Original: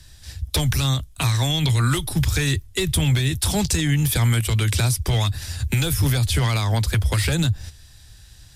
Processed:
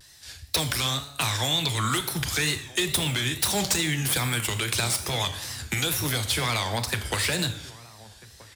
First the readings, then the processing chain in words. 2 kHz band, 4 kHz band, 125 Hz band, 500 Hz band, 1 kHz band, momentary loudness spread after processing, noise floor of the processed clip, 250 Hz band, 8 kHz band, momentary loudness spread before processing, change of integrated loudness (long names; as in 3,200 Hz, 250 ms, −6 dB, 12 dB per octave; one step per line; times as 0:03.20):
0.0 dB, +0.5 dB, −11.5 dB, −3.0 dB, 0.0 dB, 6 LU, −51 dBFS, −7.0 dB, −0.5 dB, 5 LU, −4.0 dB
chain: stylus tracing distortion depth 0.028 ms
high-pass filter 480 Hz 6 dB per octave
slap from a distant wall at 220 metres, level −19 dB
four-comb reverb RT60 0.77 s, combs from 27 ms, DRR 8.5 dB
tape wow and flutter 120 cents